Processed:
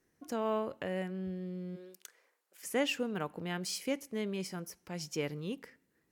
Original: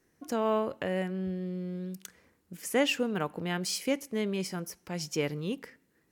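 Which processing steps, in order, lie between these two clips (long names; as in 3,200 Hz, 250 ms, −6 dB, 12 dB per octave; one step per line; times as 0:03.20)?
0:01.75–0:02.62: high-pass filter 290 Hz → 630 Hz 24 dB per octave
level −5 dB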